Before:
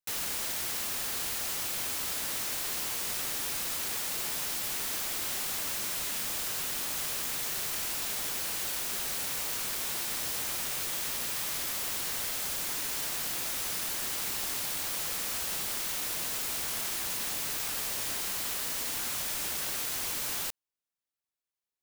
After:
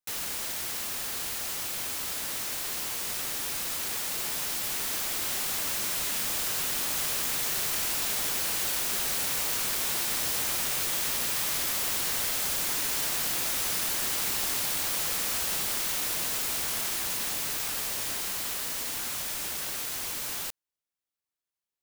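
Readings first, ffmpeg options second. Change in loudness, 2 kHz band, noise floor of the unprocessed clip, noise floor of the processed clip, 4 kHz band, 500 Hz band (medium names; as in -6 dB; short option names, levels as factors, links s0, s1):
+3.0 dB, +3.0 dB, under -85 dBFS, under -85 dBFS, +3.0 dB, +3.0 dB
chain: -af "dynaudnorm=f=590:g=17:m=1.68"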